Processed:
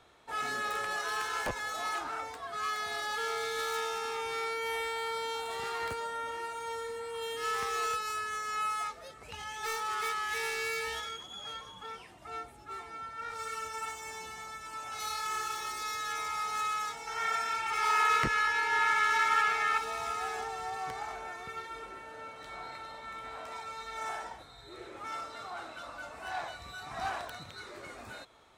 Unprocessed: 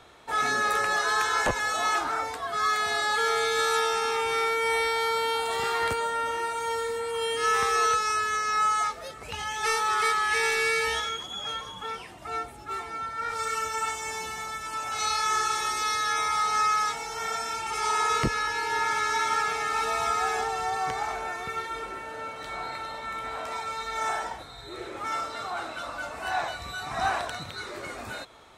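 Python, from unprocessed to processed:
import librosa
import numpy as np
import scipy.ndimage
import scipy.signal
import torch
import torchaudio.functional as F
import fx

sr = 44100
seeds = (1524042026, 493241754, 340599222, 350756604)

y = fx.self_delay(x, sr, depth_ms=0.074)
y = fx.peak_eq(y, sr, hz=1800.0, db=10.5, octaves=2.0, at=(17.07, 19.78))
y = F.gain(torch.from_numpy(y), -8.5).numpy()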